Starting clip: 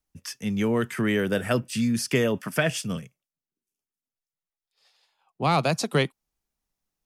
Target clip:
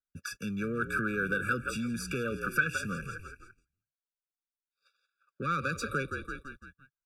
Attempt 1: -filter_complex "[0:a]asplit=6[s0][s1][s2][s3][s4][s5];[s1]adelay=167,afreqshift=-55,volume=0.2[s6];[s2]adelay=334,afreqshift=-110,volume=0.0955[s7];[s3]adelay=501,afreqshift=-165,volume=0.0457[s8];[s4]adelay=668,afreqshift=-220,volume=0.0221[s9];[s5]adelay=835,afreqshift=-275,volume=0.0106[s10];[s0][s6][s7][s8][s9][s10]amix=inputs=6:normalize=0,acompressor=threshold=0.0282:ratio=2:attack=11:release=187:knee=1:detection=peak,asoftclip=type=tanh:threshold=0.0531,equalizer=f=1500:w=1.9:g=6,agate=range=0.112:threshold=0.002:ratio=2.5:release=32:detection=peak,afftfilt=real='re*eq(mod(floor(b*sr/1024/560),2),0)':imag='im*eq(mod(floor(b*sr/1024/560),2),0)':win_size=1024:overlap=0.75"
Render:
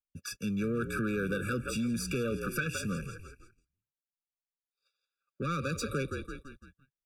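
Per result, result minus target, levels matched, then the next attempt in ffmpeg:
2 kHz band -5.5 dB; compression: peak gain reduction -3.5 dB
-filter_complex "[0:a]asplit=6[s0][s1][s2][s3][s4][s5];[s1]adelay=167,afreqshift=-55,volume=0.2[s6];[s2]adelay=334,afreqshift=-110,volume=0.0955[s7];[s3]adelay=501,afreqshift=-165,volume=0.0457[s8];[s4]adelay=668,afreqshift=-220,volume=0.0221[s9];[s5]adelay=835,afreqshift=-275,volume=0.0106[s10];[s0][s6][s7][s8][s9][s10]amix=inputs=6:normalize=0,acompressor=threshold=0.0282:ratio=2:attack=11:release=187:knee=1:detection=peak,asoftclip=type=tanh:threshold=0.0531,equalizer=f=1500:w=1.9:g=16,agate=range=0.112:threshold=0.002:ratio=2.5:release=32:detection=peak,afftfilt=real='re*eq(mod(floor(b*sr/1024/560),2),0)':imag='im*eq(mod(floor(b*sr/1024/560),2),0)':win_size=1024:overlap=0.75"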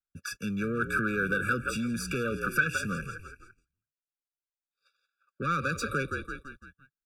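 compression: peak gain reduction -3.5 dB
-filter_complex "[0:a]asplit=6[s0][s1][s2][s3][s4][s5];[s1]adelay=167,afreqshift=-55,volume=0.2[s6];[s2]adelay=334,afreqshift=-110,volume=0.0955[s7];[s3]adelay=501,afreqshift=-165,volume=0.0457[s8];[s4]adelay=668,afreqshift=-220,volume=0.0221[s9];[s5]adelay=835,afreqshift=-275,volume=0.0106[s10];[s0][s6][s7][s8][s9][s10]amix=inputs=6:normalize=0,acompressor=threshold=0.0126:ratio=2:attack=11:release=187:knee=1:detection=peak,asoftclip=type=tanh:threshold=0.0531,equalizer=f=1500:w=1.9:g=16,agate=range=0.112:threshold=0.002:ratio=2.5:release=32:detection=peak,afftfilt=real='re*eq(mod(floor(b*sr/1024/560),2),0)':imag='im*eq(mod(floor(b*sr/1024/560),2),0)':win_size=1024:overlap=0.75"

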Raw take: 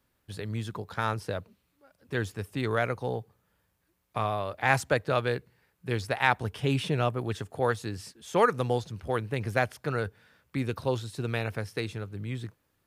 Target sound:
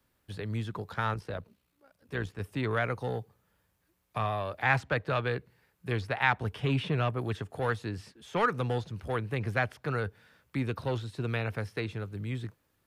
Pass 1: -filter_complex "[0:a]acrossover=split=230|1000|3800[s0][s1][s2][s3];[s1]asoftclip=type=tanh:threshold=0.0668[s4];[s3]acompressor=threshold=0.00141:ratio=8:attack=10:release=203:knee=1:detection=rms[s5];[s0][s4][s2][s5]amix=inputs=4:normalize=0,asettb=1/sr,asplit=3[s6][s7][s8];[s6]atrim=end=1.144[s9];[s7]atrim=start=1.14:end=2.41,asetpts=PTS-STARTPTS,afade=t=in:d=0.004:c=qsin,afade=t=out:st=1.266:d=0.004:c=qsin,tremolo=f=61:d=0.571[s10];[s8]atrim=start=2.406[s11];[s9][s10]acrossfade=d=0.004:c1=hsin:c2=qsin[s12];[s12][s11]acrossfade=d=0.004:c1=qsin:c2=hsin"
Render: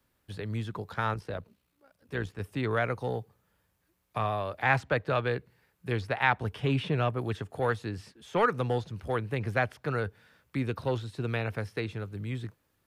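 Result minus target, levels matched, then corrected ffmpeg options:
saturation: distortion -6 dB
-filter_complex "[0:a]acrossover=split=230|1000|3800[s0][s1][s2][s3];[s1]asoftclip=type=tanh:threshold=0.0316[s4];[s3]acompressor=threshold=0.00141:ratio=8:attack=10:release=203:knee=1:detection=rms[s5];[s0][s4][s2][s5]amix=inputs=4:normalize=0,asettb=1/sr,asplit=3[s6][s7][s8];[s6]atrim=end=1.144[s9];[s7]atrim=start=1.14:end=2.41,asetpts=PTS-STARTPTS,afade=t=in:d=0.004:c=qsin,afade=t=out:st=1.266:d=0.004:c=qsin,tremolo=f=61:d=0.571[s10];[s8]atrim=start=2.406[s11];[s9][s10]acrossfade=d=0.004:c1=hsin:c2=qsin[s12];[s12][s11]acrossfade=d=0.004:c1=qsin:c2=hsin"

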